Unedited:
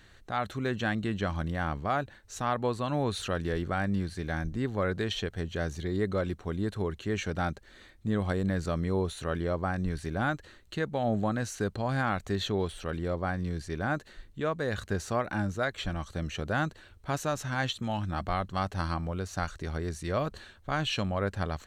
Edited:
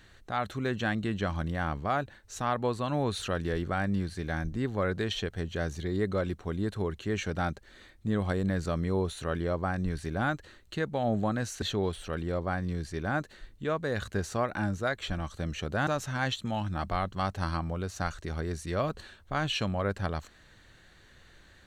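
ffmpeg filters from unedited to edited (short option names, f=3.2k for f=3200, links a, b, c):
-filter_complex "[0:a]asplit=3[a][b][c];[a]atrim=end=11.622[d];[b]atrim=start=12.378:end=16.632[e];[c]atrim=start=17.238[f];[d][e]acrossfade=d=0.004:c1=hsin:c2=hsin[g];[g][f]acrossfade=d=0.004:c1=hsin:c2=hsin"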